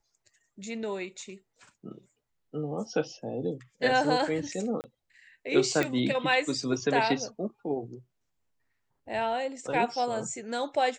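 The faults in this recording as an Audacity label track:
4.810000	4.840000	gap 29 ms
5.830000	5.830000	pop -14 dBFS

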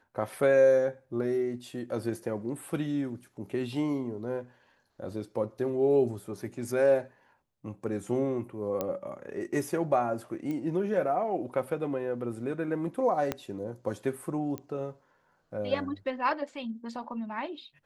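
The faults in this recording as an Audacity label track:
8.810000	8.810000	pop -17 dBFS
10.510000	10.510000	pop -24 dBFS
13.320000	13.320000	pop -15 dBFS
14.580000	14.580000	pop -22 dBFS

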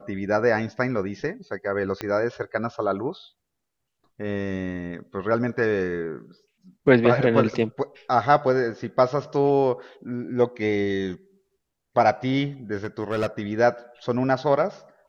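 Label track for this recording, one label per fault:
2.010000	2.010000	pop -14 dBFS
12.760000	13.270000	clipped -20 dBFS

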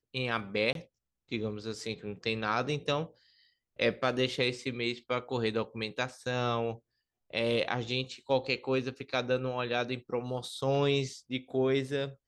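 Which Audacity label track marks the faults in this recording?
0.730000	0.750000	gap 22 ms

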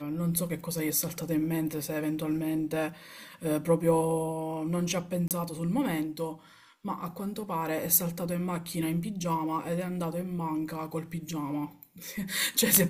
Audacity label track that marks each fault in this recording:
5.280000	5.310000	gap 28 ms

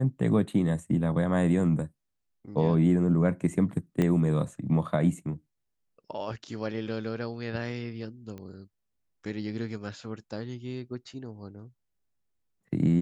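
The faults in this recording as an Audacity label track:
4.020000	4.020000	pop -15 dBFS
8.380000	8.380000	pop -29 dBFS

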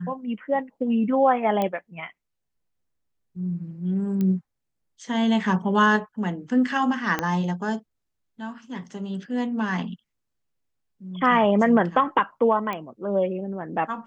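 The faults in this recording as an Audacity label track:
1.620000	1.620000	pop -13 dBFS
4.210000	4.210000	pop -16 dBFS
7.190000	7.190000	pop -10 dBFS
12.730000	12.730000	pop -17 dBFS

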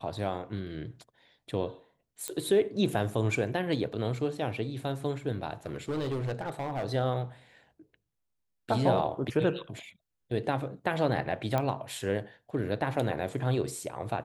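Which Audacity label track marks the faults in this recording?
2.280000	2.280000	pop -16 dBFS
5.660000	6.840000	clipped -28.5 dBFS
11.580000	11.580000	pop -16 dBFS

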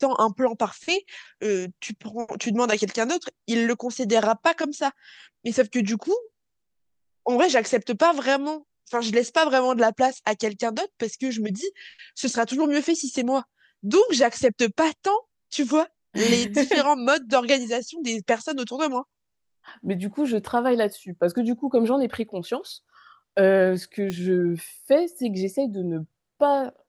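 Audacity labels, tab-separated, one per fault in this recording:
24.100000	24.100000	pop -15 dBFS

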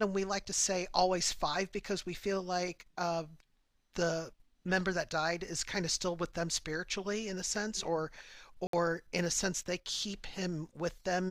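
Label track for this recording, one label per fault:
8.670000	8.730000	gap 63 ms

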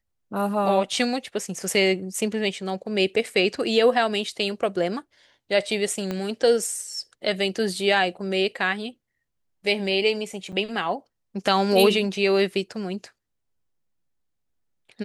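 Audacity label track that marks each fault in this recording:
6.110000	6.110000	pop -15 dBFS
10.520000	10.530000	gap 7.4 ms

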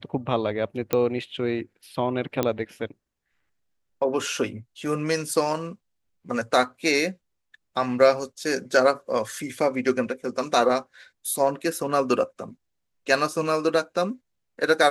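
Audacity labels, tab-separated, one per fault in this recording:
0.930000	0.930000	pop -8 dBFS
2.430000	2.430000	pop -9 dBFS

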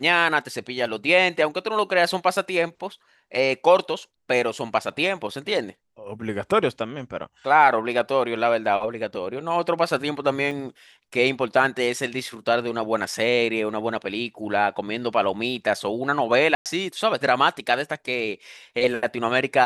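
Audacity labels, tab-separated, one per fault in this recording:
10.510000	10.510000	gap 4.4 ms
16.550000	16.660000	gap 0.108 s

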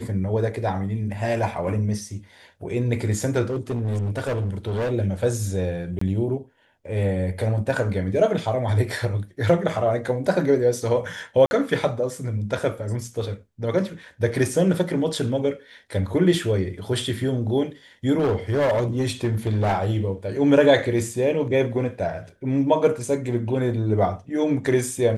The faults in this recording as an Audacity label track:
3.460000	4.920000	clipped -21.5 dBFS
5.990000	6.010000	gap 24 ms
11.460000	11.510000	gap 50 ms
18.180000	19.870000	clipped -17 dBFS

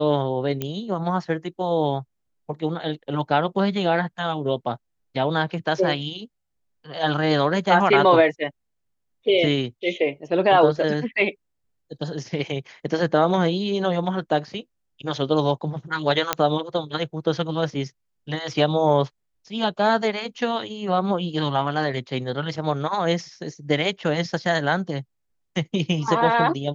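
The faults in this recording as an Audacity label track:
0.620000	0.620000	pop -12 dBFS
16.330000	16.330000	pop -3 dBFS

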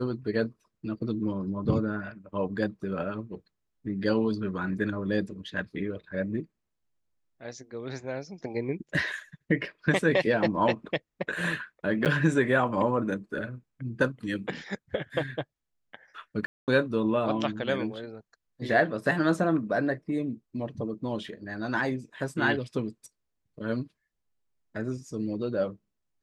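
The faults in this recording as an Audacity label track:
12.050000	12.060000	gap 8.4 ms
16.460000	16.680000	gap 0.218 s

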